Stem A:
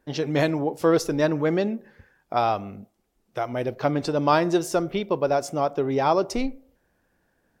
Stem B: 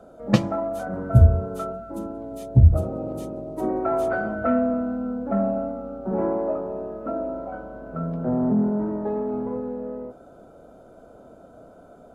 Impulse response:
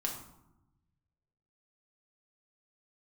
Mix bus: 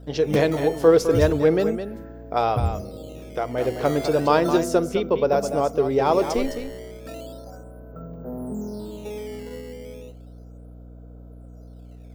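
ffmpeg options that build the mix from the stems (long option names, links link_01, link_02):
-filter_complex "[0:a]volume=-0.5dB,asplit=2[link_01][link_02];[link_02]volume=-9dB[link_03];[1:a]acrusher=samples=10:mix=1:aa=0.000001:lfo=1:lforange=16:lforate=0.34,volume=-11dB[link_04];[link_03]aecho=0:1:210:1[link_05];[link_01][link_04][link_05]amix=inputs=3:normalize=0,equalizer=frequency=460:width_type=o:width=0.34:gain=8.5,aeval=exprs='val(0)+0.00891*(sin(2*PI*60*n/s)+sin(2*PI*2*60*n/s)/2+sin(2*PI*3*60*n/s)/3+sin(2*PI*4*60*n/s)/4+sin(2*PI*5*60*n/s)/5)':channel_layout=same"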